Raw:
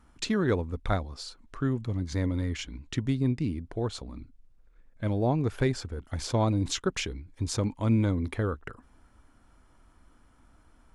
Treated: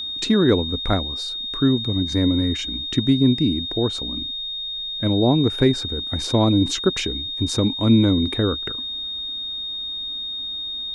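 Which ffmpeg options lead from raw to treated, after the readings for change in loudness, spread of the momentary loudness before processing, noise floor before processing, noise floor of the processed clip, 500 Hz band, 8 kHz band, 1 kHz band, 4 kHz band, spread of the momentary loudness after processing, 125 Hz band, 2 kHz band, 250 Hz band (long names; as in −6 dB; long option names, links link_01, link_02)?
+9.0 dB, 11 LU, −61 dBFS, −29 dBFS, +8.5 dB, +4.5 dB, +5.5 dB, +19.5 dB, 9 LU, +6.0 dB, +4.5 dB, +11.0 dB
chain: -af "equalizer=frequency=290:width=1.2:gain=8,aeval=exprs='val(0)+0.0282*sin(2*PI*3700*n/s)':channel_layout=same,volume=4.5dB"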